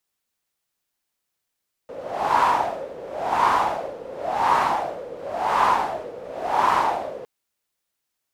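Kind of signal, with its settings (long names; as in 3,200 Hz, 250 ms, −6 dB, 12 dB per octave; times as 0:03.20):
wind from filtered noise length 5.36 s, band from 500 Hz, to 1,000 Hz, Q 5.8, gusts 5, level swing 18.5 dB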